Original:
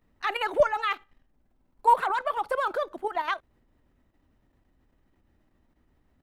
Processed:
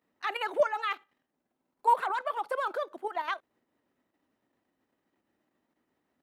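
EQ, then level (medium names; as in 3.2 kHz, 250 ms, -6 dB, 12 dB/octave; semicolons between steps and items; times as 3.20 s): high-pass 260 Hz 12 dB/octave; -4.0 dB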